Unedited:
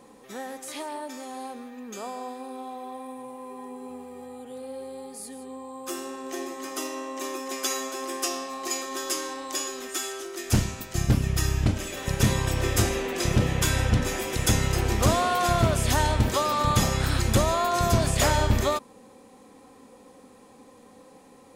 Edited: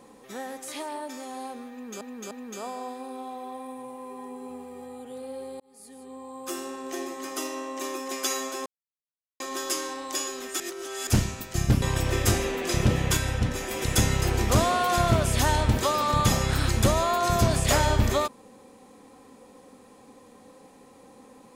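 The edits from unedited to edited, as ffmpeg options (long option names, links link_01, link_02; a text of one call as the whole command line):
ffmpeg -i in.wav -filter_complex "[0:a]asplit=11[link_01][link_02][link_03][link_04][link_05][link_06][link_07][link_08][link_09][link_10][link_11];[link_01]atrim=end=2.012[link_12];[link_02]atrim=start=1.708:end=2.012[link_13];[link_03]atrim=start=1.708:end=5,asetpts=PTS-STARTPTS,afade=type=out:start_time=3.288:duration=0.004:curve=hsin[link_14];[link_04]atrim=start=5:end=8.06,asetpts=PTS-STARTPTS,afade=type=in:duration=1.05:curve=qsin,afade=type=out:start_time=3.056:duration=0.004:curve=hsin[link_15];[link_05]atrim=start=8.06:end=8.8,asetpts=PTS-STARTPTS,volume=0[link_16];[link_06]atrim=start=8.8:end=10.002,asetpts=PTS-STARTPTS,afade=type=in:duration=0.004:curve=hsin[link_17];[link_07]atrim=start=9.998:end=10.472,asetpts=PTS-STARTPTS,areverse[link_18];[link_08]atrim=start=10.468:end=11.222[link_19];[link_09]atrim=start=12.328:end=13.682[link_20];[link_10]atrim=start=13.678:end=14.222,asetpts=PTS-STARTPTS,volume=-3.5dB[link_21];[link_11]atrim=start=14.218[link_22];[link_12][link_13]acrossfade=duration=0.004:curve1=hsin:curve2=hsin[link_23];[link_14][link_15][link_16][link_17]concat=n=4:v=0:a=1[link_24];[link_23][link_24]acrossfade=duration=0.004:curve1=hsin:curve2=hsin[link_25];[link_25][link_18]acrossfade=duration=0.004:curve1=hsin:curve2=hsin[link_26];[link_26][link_19]acrossfade=duration=0.004:curve1=hsin:curve2=hsin[link_27];[link_27][link_20]acrossfade=duration=0.004:curve1=hsin:curve2=hsin[link_28];[link_28][link_21]acrossfade=duration=0.004:curve1=hsin:curve2=hsin[link_29];[link_29][link_22]acrossfade=duration=0.004:curve1=hsin:curve2=hsin" out.wav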